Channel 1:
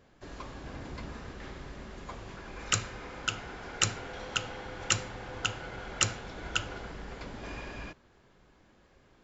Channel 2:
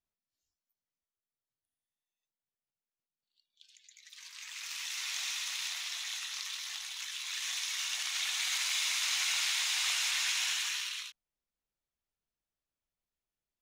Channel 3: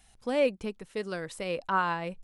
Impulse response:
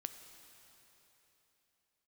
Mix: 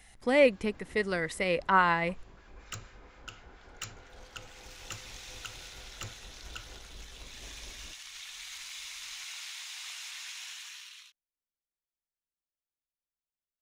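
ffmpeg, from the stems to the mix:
-filter_complex "[0:a]asubboost=boost=3.5:cutoff=72,acrossover=split=1200[s0][s1];[s0]aeval=exprs='val(0)*(1-0.5/2+0.5/2*cos(2*PI*4.3*n/s))':c=same[s2];[s1]aeval=exprs='val(0)*(1-0.5/2-0.5/2*cos(2*PI*4.3*n/s))':c=same[s3];[s2][s3]amix=inputs=2:normalize=0,asoftclip=type=hard:threshold=0.0944,volume=0.316[s4];[1:a]volume=0.282[s5];[2:a]equalizer=f=2000:t=o:w=0.25:g=13,volume=1.41[s6];[s4][s5][s6]amix=inputs=3:normalize=0"

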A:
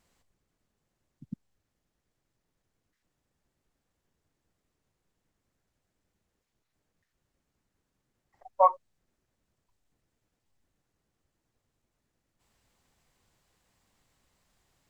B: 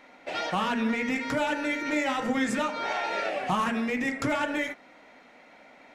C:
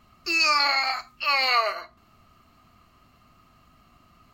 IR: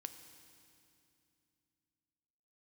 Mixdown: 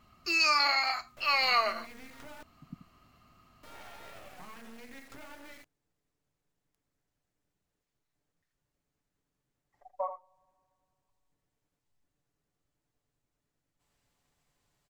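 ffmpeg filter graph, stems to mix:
-filter_complex "[0:a]aecho=1:1:6.9:0.35,acompressor=threshold=0.0355:ratio=2.5,adelay=1400,volume=0.473,asplit=3[s0][s1][s2];[s1]volume=0.188[s3];[s2]volume=0.335[s4];[1:a]bandreject=f=50:t=h:w=6,bandreject=f=100:t=h:w=6,bandreject=f=150:t=h:w=6,bandreject=f=200:t=h:w=6,bandreject=f=250:t=h:w=6,bandreject=f=300:t=h:w=6,bandreject=f=350:t=h:w=6,bandreject=f=400:t=h:w=6,bandreject=f=450:t=h:w=6,acompressor=threshold=0.0316:ratio=2,acrusher=bits=4:dc=4:mix=0:aa=0.000001,adelay=900,volume=0.2,asplit=3[s5][s6][s7];[s5]atrim=end=2.43,asetpts=PTS-STARTPTS,afade=t=out:st=2.426:d=0.004:c=hsin[s8];[s6]atrim=start=2.43:end=3.63,asetpts=PTS-STARTPTS,volume=0[s9];[s7]atrim=start=3.63,asetpts=PTS-STARTPTS,afade=t=in:d=0.004:c=hsin[s10];[s8][s9][s10]concat=n=3:v=0:a=1[s11];[2:a]volume=0.596[s12];[3:a]atrim=start_sample=2205[s13];[s3][s13]afir=irnorm=-1:irlink=0[s14];[s4]aecho=0:1:82:1[s15];[s0][s11][s12][s14][s15]amix=inputs=5:normalize=0"

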